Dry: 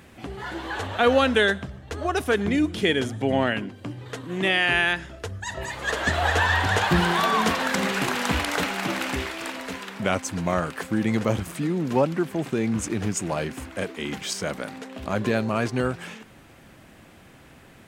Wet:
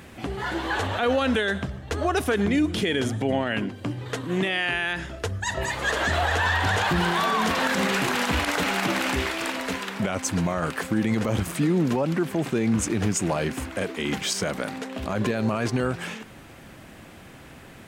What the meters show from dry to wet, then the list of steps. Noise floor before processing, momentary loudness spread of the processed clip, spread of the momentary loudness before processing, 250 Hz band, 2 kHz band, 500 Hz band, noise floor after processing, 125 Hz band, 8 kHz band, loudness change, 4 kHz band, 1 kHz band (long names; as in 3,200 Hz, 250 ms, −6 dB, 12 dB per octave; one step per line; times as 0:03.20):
−50 dBFS, 8 LU, 13 LU, +1.0 dB, −1.0 dB, −1.5 dB, −46 dBFS, +1.0 dB, +2.0 dB, −0.5 dB, −0.5 dB, −0.5 dB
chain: brickwall limiter −19 dBFS, peak gain reduction 11.5 dB
level +4.5 dB